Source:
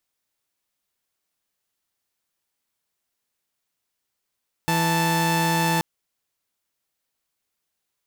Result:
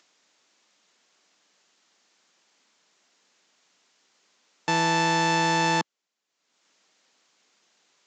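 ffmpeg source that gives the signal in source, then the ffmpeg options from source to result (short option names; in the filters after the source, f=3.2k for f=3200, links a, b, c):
-f lavfi -i "aevalsrc='0.106*((2*mod(164.81*t,1)-1)+(2*mod(880*t,1)-1))':d=1.13:s=44100"
-af "highpass=f=190:w=0.5412,highpass=f=190:w=1.3066,acompressor=mode=upward:threshold=-47dB:ratio=2.5" -ar 16000 -c:a libvorbis -b:a 96k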